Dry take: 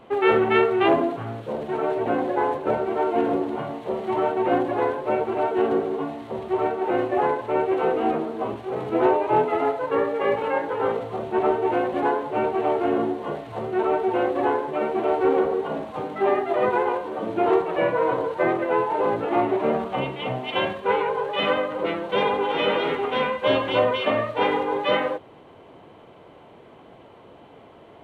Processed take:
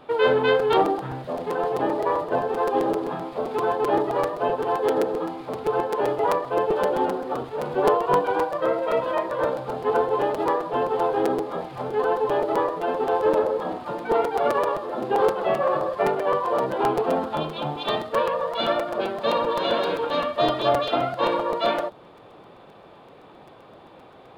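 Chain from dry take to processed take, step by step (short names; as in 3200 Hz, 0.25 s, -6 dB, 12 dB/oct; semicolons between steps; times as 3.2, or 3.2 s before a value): varispeed +15%; dynamic EQ 2200 Hz, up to -8 dB, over -45 dBFS, Q 2.1; crackling interface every 0.13 s, samples 256, repeat, from 0.59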